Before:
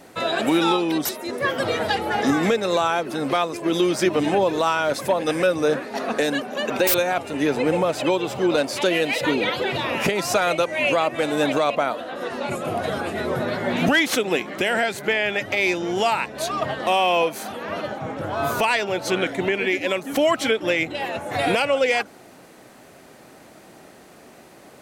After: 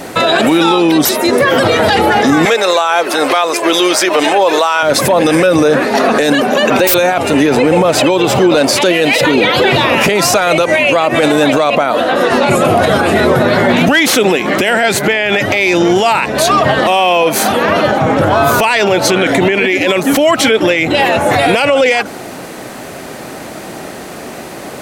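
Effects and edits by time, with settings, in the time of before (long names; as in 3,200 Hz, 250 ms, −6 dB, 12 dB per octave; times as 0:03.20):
0:02.45–0:04.83: high-pass filter 560 Hz
whole clip: boost into a limiter +21 dB; level −1 dB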